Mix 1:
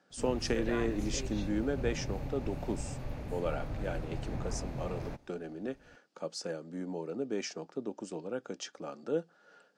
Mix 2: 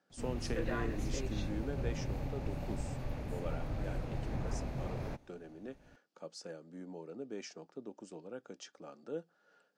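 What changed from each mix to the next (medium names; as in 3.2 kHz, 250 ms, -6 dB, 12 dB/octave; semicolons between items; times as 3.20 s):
speech -8.5 dB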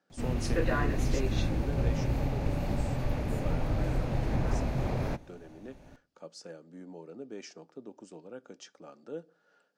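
background +8.0 dB; reverb: on, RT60 0.45 s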